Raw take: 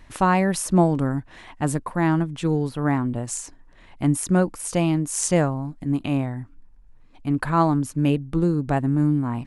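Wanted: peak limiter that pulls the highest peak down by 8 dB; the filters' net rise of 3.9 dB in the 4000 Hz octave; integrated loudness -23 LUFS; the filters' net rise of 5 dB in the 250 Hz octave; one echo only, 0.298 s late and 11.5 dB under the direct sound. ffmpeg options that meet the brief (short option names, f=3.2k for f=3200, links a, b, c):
-af "equalizer=f=250:t=o:g=7,equalizer=f=4k:t=o:g=5.5,alimiter=limit=-11dB:level=0:latency=1,aecho=1:1:298:0.266,volume=-1.5dB"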